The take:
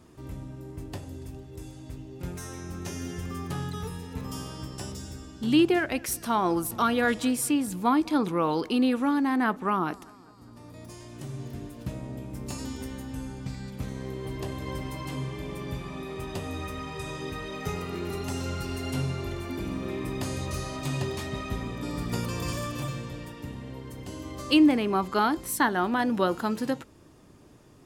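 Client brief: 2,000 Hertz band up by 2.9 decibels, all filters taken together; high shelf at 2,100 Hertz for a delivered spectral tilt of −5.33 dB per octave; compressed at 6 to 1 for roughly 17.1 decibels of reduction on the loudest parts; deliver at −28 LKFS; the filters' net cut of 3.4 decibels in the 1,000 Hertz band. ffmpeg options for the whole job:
ffmpeg -i in.wav -af "equalizer=frequency=1000:width_type=o:gain=-6,equalizer=frequency=2000:width_type=o:gain=8,highshelf=frequency=2100:gain=-3.5,acompressor=threshold=-35dB:ratio=6,volume=11dB" out.wav

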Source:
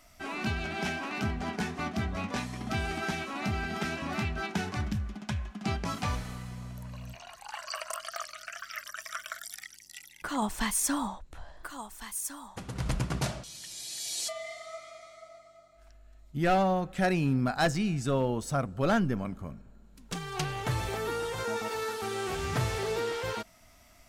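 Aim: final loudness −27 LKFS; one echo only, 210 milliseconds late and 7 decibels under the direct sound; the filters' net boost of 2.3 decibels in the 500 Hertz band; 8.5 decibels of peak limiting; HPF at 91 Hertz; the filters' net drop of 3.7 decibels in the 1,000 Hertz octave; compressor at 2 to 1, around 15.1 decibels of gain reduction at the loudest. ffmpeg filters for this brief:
ffmpeg -i in.wav -af "highpass=91,equalizer=frequency=500:width_type=o:gain=5,equalizer=frequency=1000:width_type=o:gain=-8,acompressor=threshold=-51dB:ratio=2,alimiter=level_in=14dB:limit=-24dB:level=0:latency=1,volume=-14dB,aecho=1:1:210:0.447,volume=20dB" out.wav

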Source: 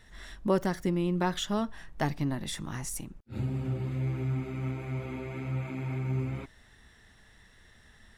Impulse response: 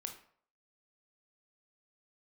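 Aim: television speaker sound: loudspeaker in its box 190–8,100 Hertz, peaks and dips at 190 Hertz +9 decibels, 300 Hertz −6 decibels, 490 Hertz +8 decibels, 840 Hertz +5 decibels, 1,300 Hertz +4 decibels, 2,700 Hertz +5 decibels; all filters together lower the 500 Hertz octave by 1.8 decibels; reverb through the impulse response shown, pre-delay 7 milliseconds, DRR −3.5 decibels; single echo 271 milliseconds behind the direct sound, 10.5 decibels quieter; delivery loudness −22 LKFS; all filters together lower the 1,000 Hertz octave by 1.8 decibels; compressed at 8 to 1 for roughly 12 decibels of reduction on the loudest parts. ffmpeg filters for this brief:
-filter_complex "[0:a]equalizer=frequency=500:width_type=o:gain=-4,equalizer=frequency=1000:width_type=o:gain=-6,acompressor=threshold=-38dB:ratio=8,aecho=1:1:271:0.299,asplit=2[link_01][link_02];[1:a]atrim=start_sample=2205,adelay=7[link_03];[link_02][link_03]afir=irnorm=-1:irlink=0,volume=6dB[link_04];[link_01][link_04]amix=inputs=2:normalize=0,highpass=frequency=190:width=0.5412,highpass=frequency=190:width=1.3066,equalizer=frequency=190:width_type=q:width=4:gain=9,equalizer=frequency=300:width_type=q:width=4:gain=-6,equalizer=frequency=490:width_type=q:width=4:gain=8,equalizer=frequency=840:width_type=q:width=4:gain=5,equalizer=frequency=1300:width_type=q:width=4:gain=4,equalizer=frequency=2700:width_type=q:width=4:gain=5,lowpass=frequency=8100:width=0.5412,lowpass=frequency=8100:width=1.3066,volume=17.5dB"

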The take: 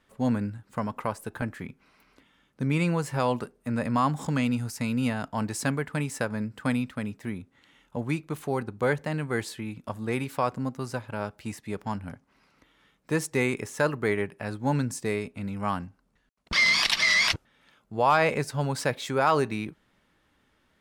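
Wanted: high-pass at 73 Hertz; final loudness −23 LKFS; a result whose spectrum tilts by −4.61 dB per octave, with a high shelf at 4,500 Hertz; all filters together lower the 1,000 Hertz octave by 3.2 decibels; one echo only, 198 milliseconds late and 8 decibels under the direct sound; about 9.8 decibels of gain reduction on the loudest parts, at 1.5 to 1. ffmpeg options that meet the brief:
ffmpeg -i in.wav -af "highpass=73,equalizer=frequency=1000:width_type=o:gain=-3.5,highshelf=frequency=4500:gain=-8.5,acompressor=threshold=-49dB:ratio=1.5,aecho=1:1:198:0.398,volume=15dB" out.wav

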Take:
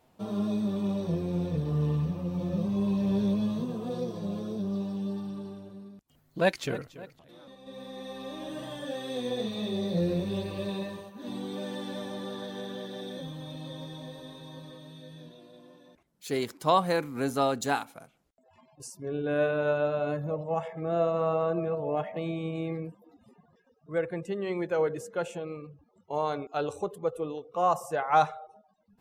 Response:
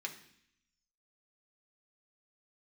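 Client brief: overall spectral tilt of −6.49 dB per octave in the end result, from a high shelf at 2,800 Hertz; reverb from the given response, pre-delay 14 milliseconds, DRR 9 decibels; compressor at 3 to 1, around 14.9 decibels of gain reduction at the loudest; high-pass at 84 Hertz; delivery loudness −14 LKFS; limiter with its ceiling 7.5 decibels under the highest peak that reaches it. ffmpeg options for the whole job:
-filter_complex "[0:a]highpass=84,highshelf=frequency=2800:gain=-7.5,acompressor=threshold=-39dB:ratio=3,alimiter=level_in=7dB:limit=-24dB:level=0:latency=1,volume=-7dB,asplit=2[link_01][link_02];[1:a]atrim=start_sample=2205,adelay=14[link_03];[link_02][link_03]afir=irnorm=-1:irlink=0,volume=-9dB[link_04];[link_01][link_04]amix=inputs=2:normalize=0,volume=27.5dB"

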